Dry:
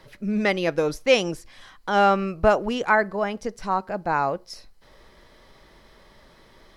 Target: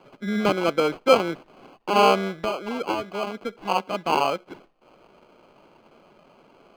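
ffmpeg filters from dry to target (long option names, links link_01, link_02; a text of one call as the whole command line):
ffmpeg -i in.wav -filter_complex "[0:a]asettb=1/sr,asplit=3[link_01][link_02][link_03];[link_01]atrim=end=2.334[link_04];[link_02]atrim=start=2.33:end=3.66,asetpts=PTS-STARTPTS,afade=type=in:duration=0.004:curve=qsin,afade=type=out:start_time=1.326:duration=0.004:curve=qsin,acrossover=split=2300|4600[link_05][link_06][link_07];[link_05]acompressor=threshold=-26dB:ratio=4[link_08];[link_06]acompressor=threshold=-39dB:ratio=4[link_09];[link_07]acompressor=threshold=-54dB:ratio=4[link_10];[link_08][link_09][link_10]amix=inputs=3:normalize=0[link_11];[link_03]atrim=start=3.656[link_12];[link_04][link_11]acrossfade=duration=0.004:curve1=hsin:curve2=qsin[link_13];[link_13][link_12]acrossfade=duration=0.004:curve1=qsin:curve2=hsin,acrusher=samples=24:mix=1:aa=0.000001,acrossover=split=170 4300:gain=0.1 1 0.141[link_14][link_15][link_16];[link_14][link_15][link_16]amix=inputs=3:normalize=0,volume=1.5dB" out.wav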